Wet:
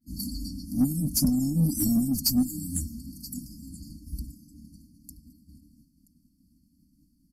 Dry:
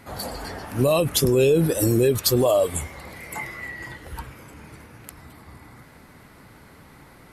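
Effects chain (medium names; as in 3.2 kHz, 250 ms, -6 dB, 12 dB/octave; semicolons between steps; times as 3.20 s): expander -37 dBFS; comb 4.3 ms, depth 78%; on a send: delay 977 ms -19.5 dB; on the sum: FFT band-reject 320–4300 Hz; peaking EQ 7.5 kHz -5.5 dB 1.6 oct; in parallel at -3.5 dB: saturation -23 dBFS, distortion -10 dB; on the sum: trim -3.5 dB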